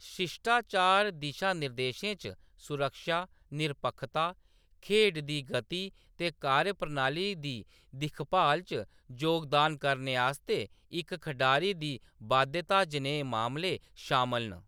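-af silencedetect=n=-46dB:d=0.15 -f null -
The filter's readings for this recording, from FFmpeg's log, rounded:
silence_start: 2.33
silence_end: 2.60 | silence_duration: 0.27
silence_start: 3.25
silence_end: 3.52 | silence_duration: 0.27
silence_start: 4.32
silence_end: 4.83 | silence_duration: 0.50
silence_start: 5.89
silence_end: 6.19 | silence_duration: 0.30
silence_start: 7.63
silence_end: 7.94 | silence_duration: 0.31
silence_start: 8.84
silence_end: 9.10 | silence_duration: 0.26
silence_start: 10.66
silence_end: 10.92 | silence_duration: 0.25
silence_start: 11.97
silence_end: 12.21 | silence_duration: 0.24
silence_start: 13.77
silence_end: 13.98 | silence_duration: 0.21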